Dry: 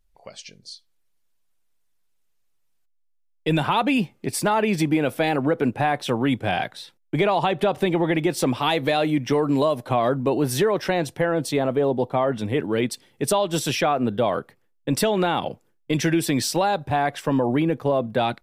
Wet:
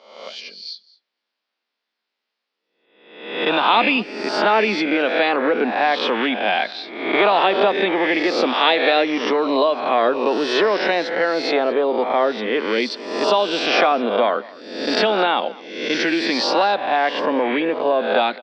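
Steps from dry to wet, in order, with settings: spectral swells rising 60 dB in 0.80 s; Chebyshev band-pass 210–4800 Hz, order 4; low shelf 330 Hz -11.5 dB; on a send: echo 0.213 s -21.5 dB; on the sum: gain +5.5 dB

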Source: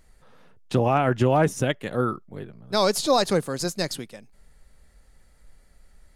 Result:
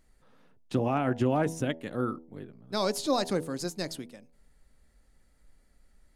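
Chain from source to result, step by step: bell 270 Hz +7 dB 0.64 oct; de-hum 81.33 Hz, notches 12; gain -8 dB

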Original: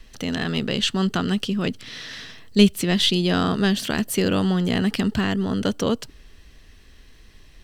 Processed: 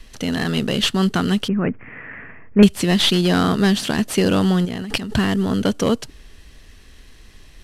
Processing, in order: CVSD 64 kbps; 1.48–2.63 steep low-pass 2400 Hz 72 dB/oct; 4.65–5.17 negative-ratio compressor -30 dBFS, ratio -1; gain +4 dB

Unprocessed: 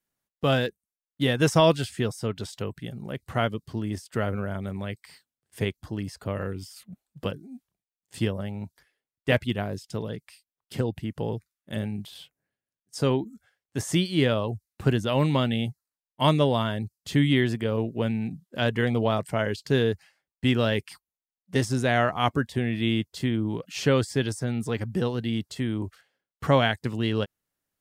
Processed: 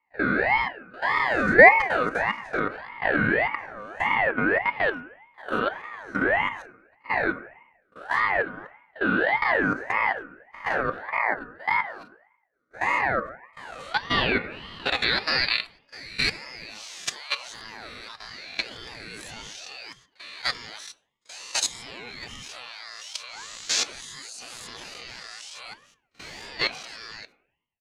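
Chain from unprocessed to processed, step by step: spectral swells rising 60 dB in 1.01 s; gate -35 dBFS, range -38 dB; in parallel at -1 dB: compressor 20:1, threshold -28 dBFS, peak gain reduction 16 dB; on the sum: band-pass sweep 650 Hz -> 5000 Hz, 13.24–15.97; dynamic EQ 4600 Hz, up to -5 dB, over -56 dBFS, Q 7.7; level quantiser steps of 18 dB; comb 3.1 ms, depth 66%; reverb RT60 0.95 s, pre-delay 4 ms, DRR 9 dB; maximiser +14 dB; ring modulator with a swept carrier 1200 Hz, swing 30%, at 1.7 Hz

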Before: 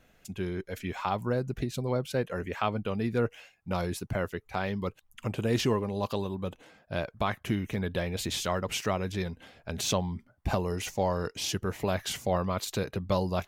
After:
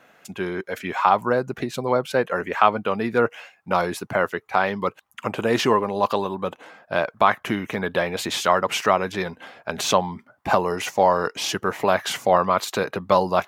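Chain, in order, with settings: HPF 170 Hz 12 dB/oct; bell 1100 Hz +11 dB 2.2 oct; gain +4 dB

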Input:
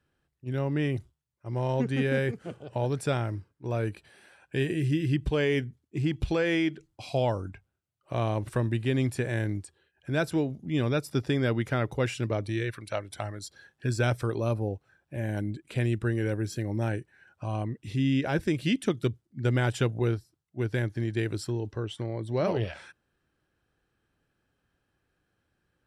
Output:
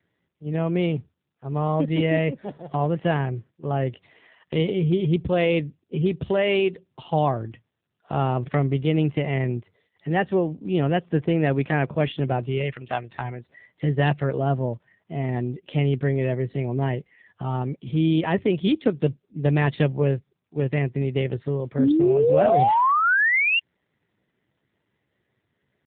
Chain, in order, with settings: painted sound rise, 21.79–23.61, 210–2400 Hz -23 dBFS; pitch shift +3 st; gain +5.5 dB; AMR-NB 7.4 kbps 8000 Hz

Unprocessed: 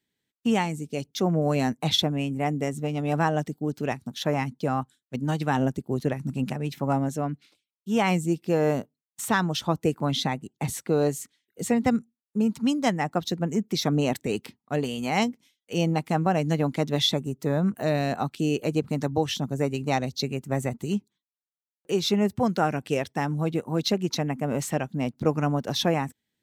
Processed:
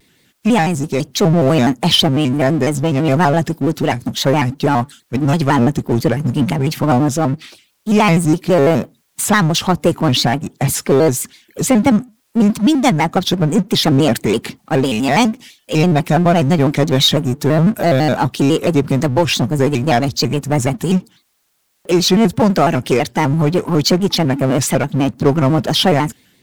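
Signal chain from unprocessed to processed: power-law curve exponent 0.7; AGC gain up to 3 dB; shaped vibrato square 6 Hz, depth 160 cents; gain +5 dB

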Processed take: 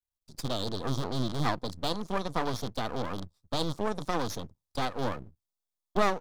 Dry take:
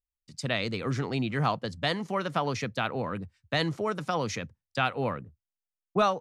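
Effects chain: rattling part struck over -33 dBFS, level -19 dBFS; brick-wall FIR band-stop 1300–3200 Hz; half-wave rectifier; gain +2.5 dB

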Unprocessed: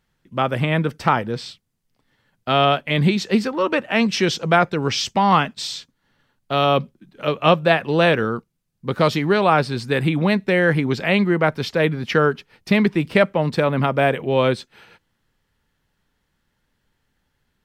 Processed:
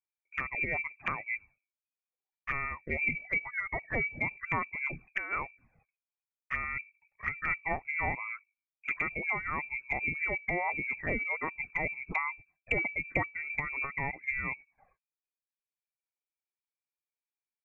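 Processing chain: gate with hold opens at -38 dBFS; reverb removal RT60 0.9 s; notches 50/100/150/200/250 Hz; inverted band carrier 2500 Hz; envelope flanger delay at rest 2.2 ms, full sweep at -18 dBFS; gain -8 dB

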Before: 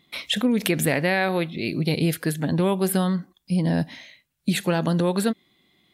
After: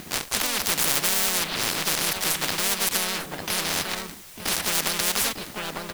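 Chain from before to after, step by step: switching dead time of 0.25 ms; low shelf 400 Hz +5 dB; notch 6800 Hz, Q 20; in parallel at +2 dB: compressor 8:1, threshold -26 dBFS, peak gain reduction 13 dB; on the sum: requantised 10-bit, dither triangular; harmoniser +3 st -4 dB; echo 0.899 s -18.5 dB; spectral compressor 10:1; gain -1 dB

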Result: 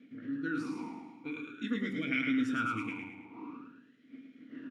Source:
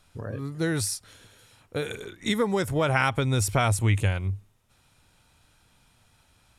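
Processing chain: wind noise 580 Hz -41 dBFS; bell 1400 Hz +4.5 dB 0.21 oct; tempo 1.4×; feedback echo 0.108 s, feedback 44%, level -4 dB; reverb RT60 1.0 s, pre-delay 3 ms, DRR 5.5 dB; vowel sweep i-u 0.47 Hz

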